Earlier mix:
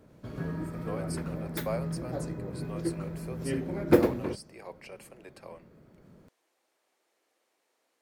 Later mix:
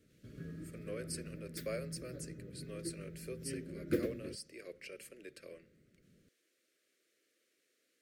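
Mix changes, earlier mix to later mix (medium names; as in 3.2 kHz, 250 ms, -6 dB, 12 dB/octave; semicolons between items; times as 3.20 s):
background -11.5 dB; master: add Butterworth band-stop 870 Hz, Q 0.84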